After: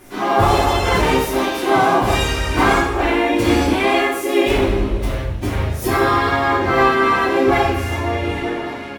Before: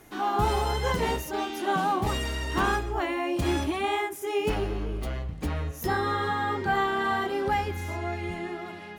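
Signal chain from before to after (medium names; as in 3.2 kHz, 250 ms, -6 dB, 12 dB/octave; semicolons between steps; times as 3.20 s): dynamic bell 2.4 kHz, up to +4 dB, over -50 dBFS, Q 3.4; harmony voices -7 st -9 dB, -3 st -3 dB, +5 st -6 dB; two-slope reverb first 0.66 s, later 2.2 s, DRR -6 dB; trim +1 dB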